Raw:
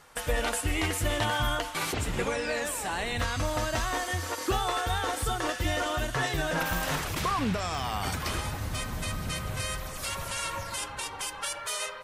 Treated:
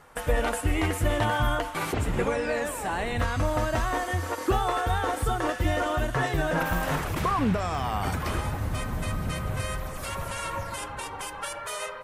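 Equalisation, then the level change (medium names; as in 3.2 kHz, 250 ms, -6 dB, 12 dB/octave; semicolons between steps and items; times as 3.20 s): peaking EQ 4.8 kHz -10 dB 2.2 oct; treble shelf 12 kHz -8 dB; +4.5 dB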